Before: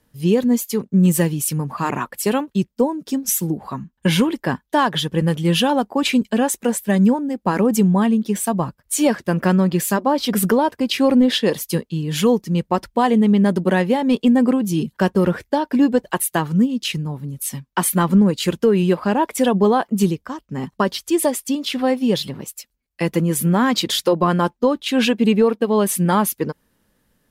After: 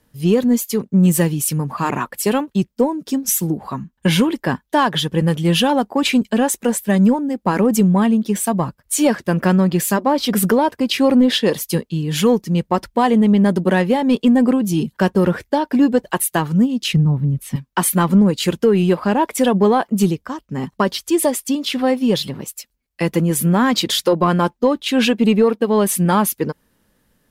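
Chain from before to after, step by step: 16.93–17.56 s: tone controls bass +11 dB, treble -13 dB; in parallel at -10 dB: saturation -16.5 dBFS, distortion -11 dB

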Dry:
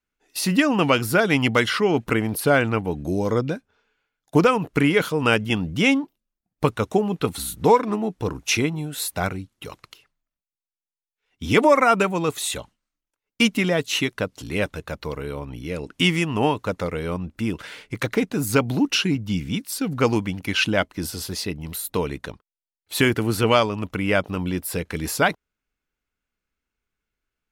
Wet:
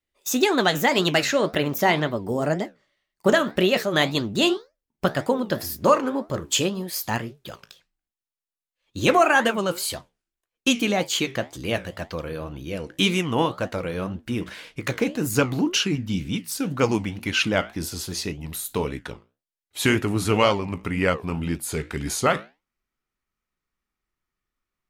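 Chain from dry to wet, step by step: gliding tape speed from 137% -> 84%; flange 1.9 Hz, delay 9.7 ms, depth 9.7 ms, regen -69%; dynamic bell 6.6 kHz, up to +6 dB, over -55 dBFS, Q 5.4; trim +3 dB

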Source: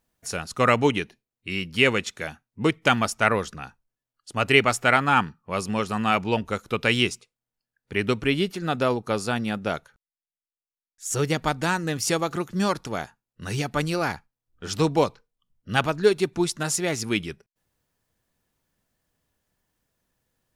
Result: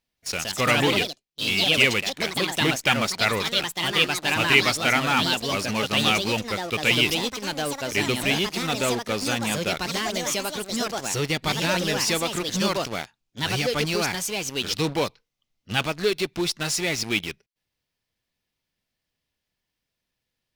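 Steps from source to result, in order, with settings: high-order bell 3.3 kHz +9 dB; in parallel at -6 dB: fuzz box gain 34 dB, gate -30 dBFS; on the sum: ever faster or slower copies 172 ms, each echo +3 st, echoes 3; trim -8.5 dB

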